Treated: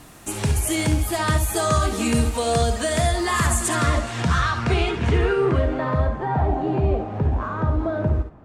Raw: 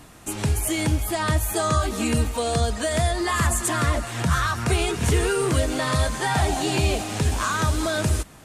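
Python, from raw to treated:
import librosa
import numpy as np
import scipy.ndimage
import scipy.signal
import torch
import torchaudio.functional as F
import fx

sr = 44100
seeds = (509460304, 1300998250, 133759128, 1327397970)

p1 = fx.dmg_noise_colour(x, sr, seeds[0], colour='violet', level_db=-52.0)
p2 = fx.filter_sweep_lowpass(p1, sr, from_hz=12000.0, to_hz=890.0, start_s=3.48, end_s=6.25, q=0.79)
p3 = p2 + fx.room_early_taps(p2, sr, ms=(56, 69), db=(-11.0, -10.5), dry=0)
y = p3 * 10.0 ** (1.0 / 20.0)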